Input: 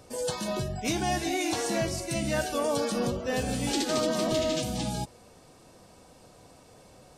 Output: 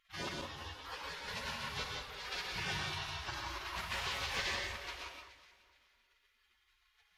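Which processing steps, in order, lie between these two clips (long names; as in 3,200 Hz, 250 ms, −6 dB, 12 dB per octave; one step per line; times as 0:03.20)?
high-pass filter 120 Hz 12 dB per octave
mains-hum notches 60/120/180/240/300/360 Hz
gate on every frequency bin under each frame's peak −30 dB weak
0:03.75–0:04.55: high-shelf EQ 11,000 Hz +9.5 dB
wave folding −36 dBFS
high-frequency loss of the air 270 metres
delay that swaps between a low-pass and a high-pass 211 ms, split 1,600 Hz, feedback 52%, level −11 dB
reverb whose tail is shaped and stops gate 200 ms rising, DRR 0.5 dB
0:00.41–0:01.28: string-ensemble chorus
level +14 dB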